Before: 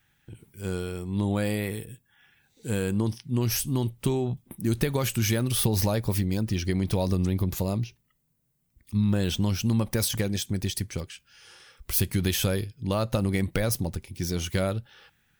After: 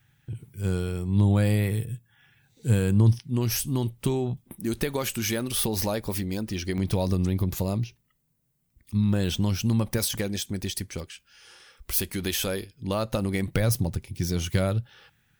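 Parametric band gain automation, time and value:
parametric band 120 Hz 0.89 octaves
+12 dB
from 0:03.19 0 dB
from 0:04.58 −9.5 dB
from 0:06.78 +1 dB
from 0:09.98 −6 dB
from 0:11.99 −14.5 dB
from 0:12.73 −4.5 dB
from 0:13.48 +6 dB

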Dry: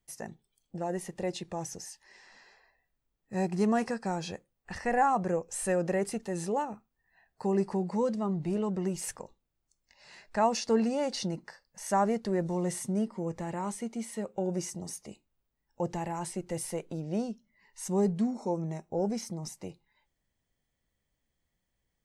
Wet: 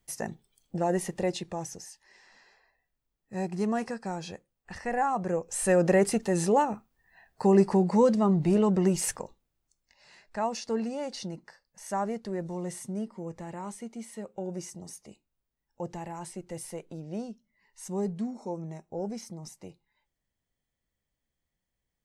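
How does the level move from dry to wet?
0:01.06 +6.5 dB
0:01.88 −2 dB
0:05.11 −2 dB
0:05.88 +7.5 dB
0:09.00 +7.5 dB
0:10.21 −4 dB

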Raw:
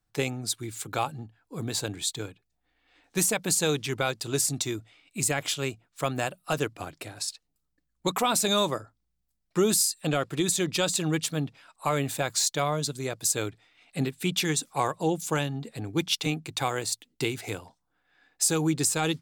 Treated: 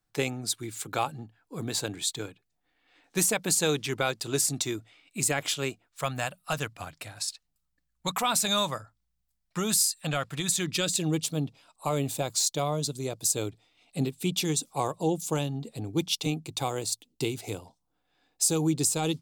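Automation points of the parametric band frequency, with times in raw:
parametric band −12.5 dB 0.93 octaves
0:05.63 61 Hz
0:06.08 360 Hz
0:10.48 360 Hz
0:11.13 1,700 Hz

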